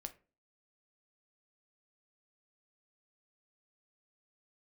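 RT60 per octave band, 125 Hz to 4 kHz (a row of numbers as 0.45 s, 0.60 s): 0.45 s, 0.45 s, 0.40 s, 0.30 s, 0.30 s, 0.20 s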